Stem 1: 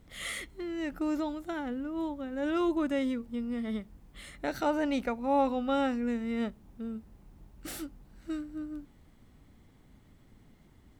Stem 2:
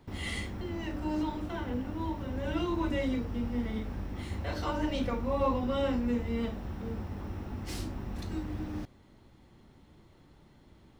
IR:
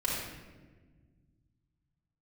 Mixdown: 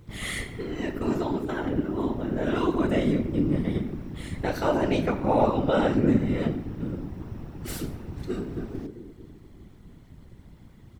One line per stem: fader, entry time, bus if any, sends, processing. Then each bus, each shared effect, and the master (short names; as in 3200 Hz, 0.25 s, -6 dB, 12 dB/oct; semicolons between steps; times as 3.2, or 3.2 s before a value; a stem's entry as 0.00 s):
+1.5 dB, 0.00 s, send -13.5 dB, dry
-3.5 dB, 13 ms, no send, dry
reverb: on, RT60 1.4 s, pre-delay 4 ms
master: low shelf 220 Hz +6 dB; whisperiser